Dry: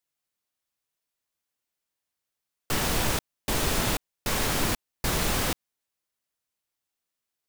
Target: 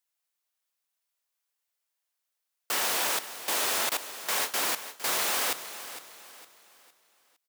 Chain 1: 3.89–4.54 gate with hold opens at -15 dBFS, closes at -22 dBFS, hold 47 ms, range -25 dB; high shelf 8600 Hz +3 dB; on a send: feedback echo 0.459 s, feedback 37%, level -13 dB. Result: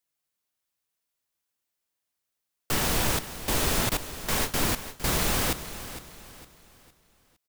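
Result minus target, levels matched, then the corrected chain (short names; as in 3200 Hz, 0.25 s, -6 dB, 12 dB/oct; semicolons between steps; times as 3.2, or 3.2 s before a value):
500 Hz band +3.5 dB
3.89–4.54 gate with hold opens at -15 dBFS, closes at -22 dBFS, hold 47 ms, range -25 dB; HPF 580 Hz 12 dB/oct; high shelf 8600 Hz +3 dB; on a send: feedback echo 0.459 s, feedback 37%, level -13 dB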